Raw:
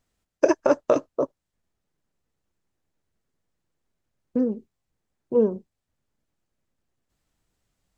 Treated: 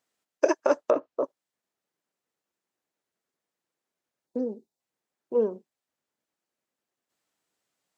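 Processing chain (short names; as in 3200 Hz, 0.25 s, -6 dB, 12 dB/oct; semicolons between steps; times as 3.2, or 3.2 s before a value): 0.82–1.24 treble ducked by the level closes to 1600 Hz, closed at -17 dBFS; Bessel high-pass 390 Hz, order 2; 4.27–4.8 spectral gain 990–3500 Hz -10 dB; gain -1.5 dB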